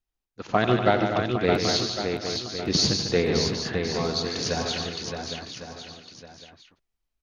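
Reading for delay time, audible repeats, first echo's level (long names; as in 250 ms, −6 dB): 90 ms, 13, −11.0 dB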